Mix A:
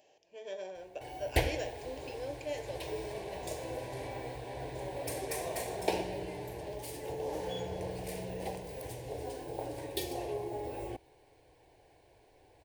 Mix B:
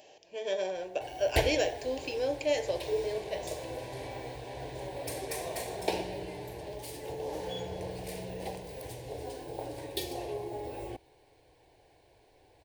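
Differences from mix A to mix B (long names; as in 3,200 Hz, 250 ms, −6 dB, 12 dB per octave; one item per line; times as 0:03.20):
speech +9.5 dB
master: add parametric band 4,000 Hz +3.5 dB 0.79 octaves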